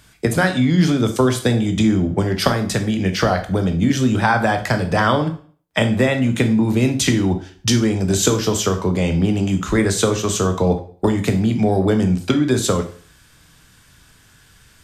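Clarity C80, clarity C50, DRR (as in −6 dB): 16.0 dB, 12.0 dB, 6.5 dB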